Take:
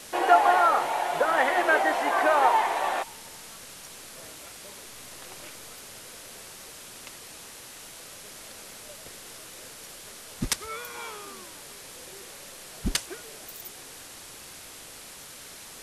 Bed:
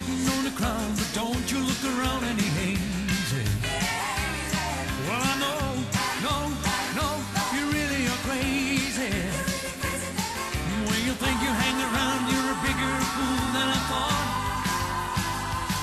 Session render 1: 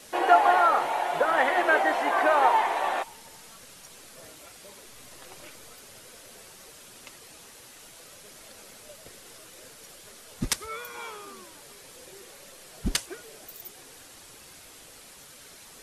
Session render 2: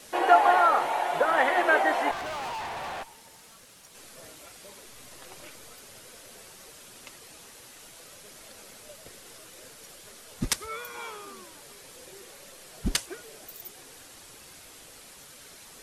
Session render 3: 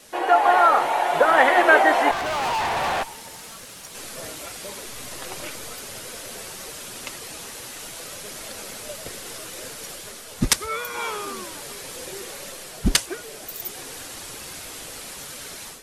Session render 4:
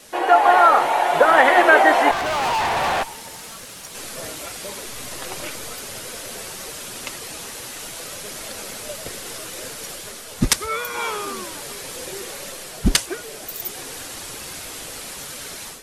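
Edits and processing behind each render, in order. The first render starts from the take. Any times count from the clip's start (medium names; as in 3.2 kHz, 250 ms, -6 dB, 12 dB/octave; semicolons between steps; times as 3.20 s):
noise reduction 6 dB, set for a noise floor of -45 dBFS
2.11–3.95 s: valve stage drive 33 dB, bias 0.7
level rider gain up to 12 dB
trim +3 dB; peak limiter -1 dBFS, peak gain reduction 2.5 dB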